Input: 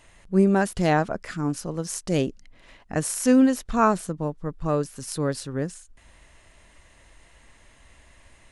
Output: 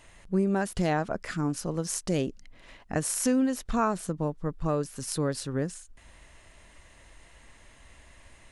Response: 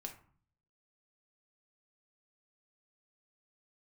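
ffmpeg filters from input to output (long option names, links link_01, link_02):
-af "acompressor=threshold=-24dB:ratio=3"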